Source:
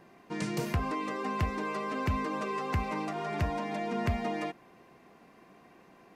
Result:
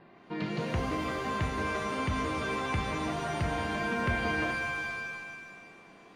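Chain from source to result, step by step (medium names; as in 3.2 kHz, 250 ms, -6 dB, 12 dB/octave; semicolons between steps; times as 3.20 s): steep low-pass 4.4 kHz 48 dB/octave; saturation -23.5 dBFS, distortion -19 dB; pitch-shifted reverb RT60 1.6 s, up +7 st, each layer -2 dB, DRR 4.5 dB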